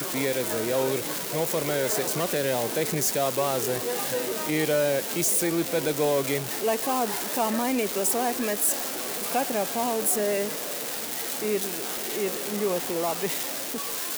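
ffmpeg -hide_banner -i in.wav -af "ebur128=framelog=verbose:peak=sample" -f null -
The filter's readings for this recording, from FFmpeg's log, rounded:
Integrated loudness:
  I:         -25.7 LUFS
  Threshold: -35.6 LUFS
Loudness range:
  LRA:         2.5 LU
  Threshold: -45.4 LUFS
  LRA low:   -27.1 LUFS
  LRA high:  -24.6 LUFS
Sample peak:
  Peak:      -16.0 dBFS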